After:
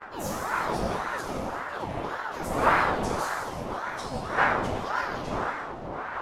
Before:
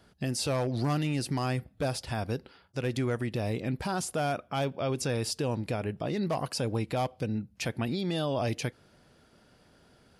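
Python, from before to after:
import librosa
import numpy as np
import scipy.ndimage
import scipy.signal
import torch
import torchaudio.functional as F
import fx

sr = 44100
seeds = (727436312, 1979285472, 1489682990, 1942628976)

p1 = fx.pitch_glide(x, sr, semitones=3.0, runs='ending unshifted')
p2 = fx.dmg_wind(p1, sr, seeds[0], corner_hz=450.0, level_db=-28.0)
p3 = fx.granulator(p2, sr, seeds[1], grain_ms=100.0, per_s=20.0, spray_ms=18.0, spread_st=3)
p4 = fx.stretch_vocoder_free(p3, sr, factor=0.61)
p5 = p4 + fx.echo_split(p4, sr, split_hz=610.0, low_ms=539, high_ms=171, feedback_pct=52, wet_db=-11.5, dry=0)
p6 = fx.rev_gated(p5, sr, seeds[2], gate_ms=420, shape='falling', drr_db=-3.5)
y = fx.ring_lfo(p6, sr, carrier_hz=790.0, swing_pct=55, hz=1.8)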